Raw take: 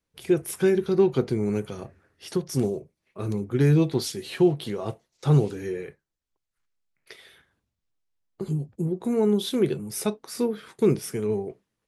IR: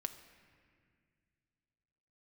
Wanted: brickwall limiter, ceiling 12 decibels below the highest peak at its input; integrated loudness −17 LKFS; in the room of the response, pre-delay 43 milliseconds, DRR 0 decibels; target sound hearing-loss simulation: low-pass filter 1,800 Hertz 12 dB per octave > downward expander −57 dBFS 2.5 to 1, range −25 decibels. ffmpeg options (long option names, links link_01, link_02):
-filter_complex "[0:a]alimiter=limit=-21dB:level=0:latency=1,asplit=2[link_01][link_02];[1:a]atrim=start_sample=2205,adelay=43[link_03];[link_02][link_03]afir=irnorm=-1:irlink=0,volume=1.5dB[link_04];[link_01][link_04]amix=inputs=2:normalize=0,lowpass=1800,agate=range=-25dB:threshold=-57dB:ratio=2.5,volume=11.5dB"